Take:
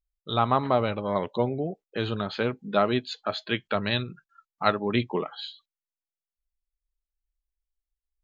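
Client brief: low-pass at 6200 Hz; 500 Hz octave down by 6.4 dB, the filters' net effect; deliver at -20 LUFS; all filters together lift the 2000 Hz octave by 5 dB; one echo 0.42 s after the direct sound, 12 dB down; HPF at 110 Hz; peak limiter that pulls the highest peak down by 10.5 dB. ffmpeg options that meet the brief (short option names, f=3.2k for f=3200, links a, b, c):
-af "highpass=110,lowpass=6.2k,equalizer=f=500:t=o:g=-9,equalizer=f=2k:t=o:g=7,alimiter=limit=-14dB:level=0:latency=1,aecho=1:1:420:0.251,volume=10.5dB"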